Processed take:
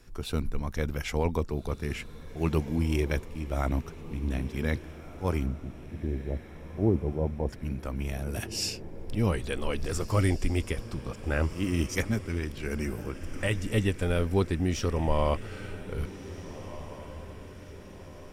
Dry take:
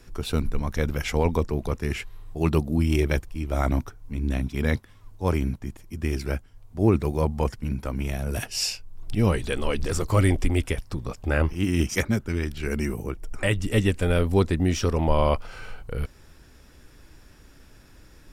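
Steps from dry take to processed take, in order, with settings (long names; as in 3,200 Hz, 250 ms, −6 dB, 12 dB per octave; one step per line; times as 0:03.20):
0:05.46–0:07.49: Butterworth low-pass 800 Hz
feedback delay with all-pass diffusion 1,671 ms, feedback 50%, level −14 dB
level −5 dB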